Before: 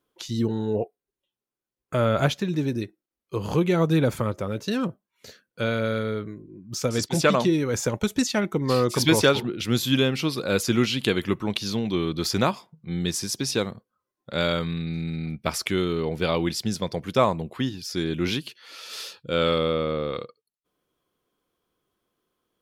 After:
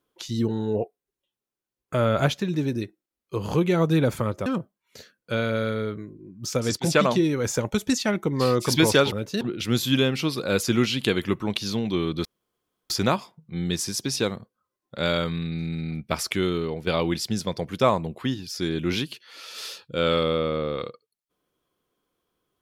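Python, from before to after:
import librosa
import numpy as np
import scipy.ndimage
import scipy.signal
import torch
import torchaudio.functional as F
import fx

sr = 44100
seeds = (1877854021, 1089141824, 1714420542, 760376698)

y = fx.edit(x, sr, fx.move(start_s=4.46, length_s=0.29, to_s=9.41),
    fx.insert_room_tone(at_s=12.25, length_s=0.65),
    fx.fade_out_to(start_s=15.9, length_s=0.32, floor_db=-7.0), tone=tone)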